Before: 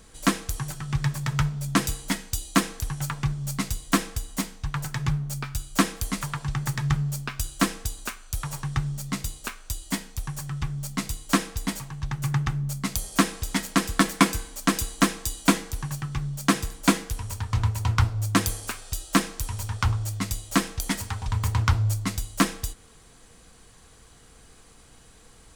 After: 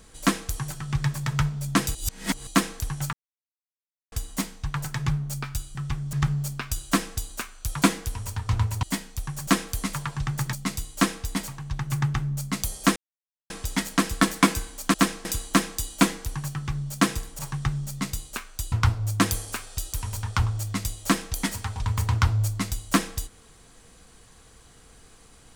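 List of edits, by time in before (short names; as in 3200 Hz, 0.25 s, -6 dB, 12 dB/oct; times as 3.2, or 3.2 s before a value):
1.95–2.47 reverse
3.13–4.12 mute
5.75–6.81 swap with 10.47–10.85
8.5–9.83 swap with 16.86–17.87
13.28 insert silence 0.54 s
19.08–19.39 move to 14.72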